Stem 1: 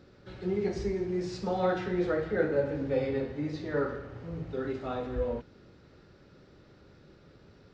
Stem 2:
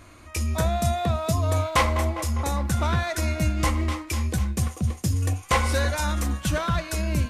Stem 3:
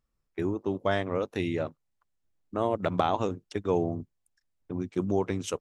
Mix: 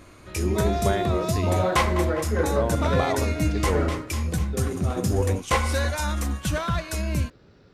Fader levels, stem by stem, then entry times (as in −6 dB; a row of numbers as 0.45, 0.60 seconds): +2.0, −1.0, −1.5 decibels; 0.00, 0.00, 0.00 seconds